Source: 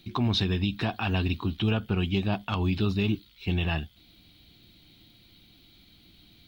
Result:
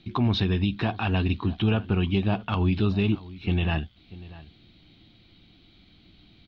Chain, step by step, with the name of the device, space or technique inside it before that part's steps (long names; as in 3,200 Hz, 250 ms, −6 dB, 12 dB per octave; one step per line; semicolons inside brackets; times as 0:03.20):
shout across a valley (high-frequency loss of the air 180 metres; slap from a distant wall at 110 metres, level −18 dB)
level +3 dB